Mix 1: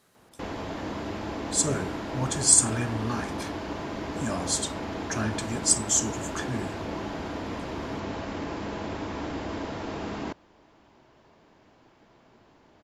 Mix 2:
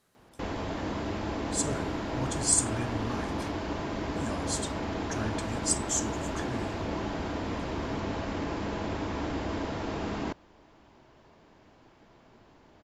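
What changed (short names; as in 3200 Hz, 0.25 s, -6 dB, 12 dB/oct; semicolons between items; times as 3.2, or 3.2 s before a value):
speech -6.5 dB; master: add low shelf 72 Hz +7 dB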